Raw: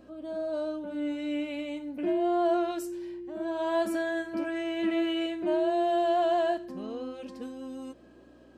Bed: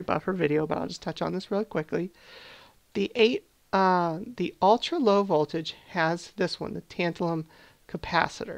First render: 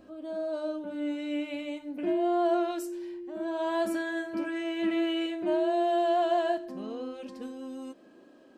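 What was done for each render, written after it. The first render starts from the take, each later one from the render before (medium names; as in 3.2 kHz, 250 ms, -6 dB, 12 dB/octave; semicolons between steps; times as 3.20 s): de-hum 60 Hz, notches 11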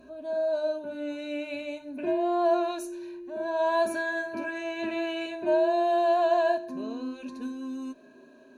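rippled EQ curve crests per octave 1.5, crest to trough 13 dB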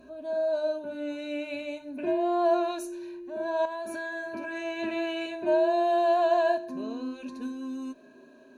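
3.65–4.51 s: compression 12:1, threshold -31 dBFS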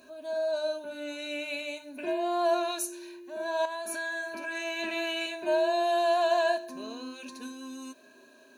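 tilt EQ +3.5 dB/octave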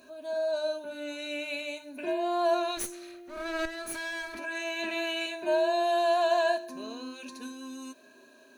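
2.77–4.39 s: comb filter that takes the minimum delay 0.47 ms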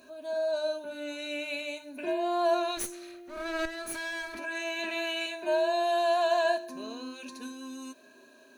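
4.79–6.45 s: bass shelf 170 Hz -12 dB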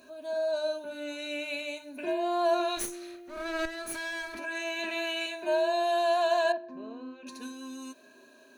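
2.56–3.16 s: doubling 37 ms -9 dB; 6.52–7.27 s: tape spacing loss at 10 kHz 42 dB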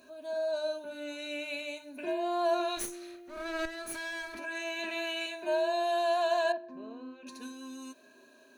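trim -2.5 dB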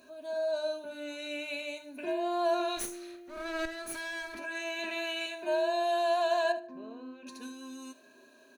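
feedback delay 74 ms, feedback 18%, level -17 dB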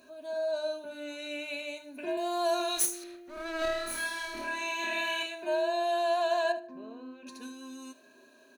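2.17–3.04 s: tone controls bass -7 dB, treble +11 dB; 3.59–5.23 s: flutter echo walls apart 4.5 m, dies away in 0.83 s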